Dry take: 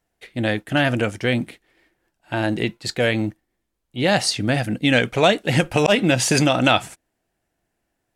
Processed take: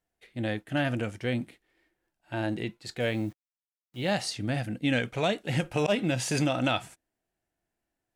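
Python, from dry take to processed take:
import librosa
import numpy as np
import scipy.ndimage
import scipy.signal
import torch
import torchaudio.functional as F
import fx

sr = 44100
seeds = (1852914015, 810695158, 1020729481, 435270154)

y = fx.quant_dither(x, sr, seeds[0], bits=8, dither='none', at=(3.0, 4.13))
y = fx.hpss(y, sr, part='percussive', gain_db=-6)
y = F.gain(torch.from_numpy(y), -7.5).numpy()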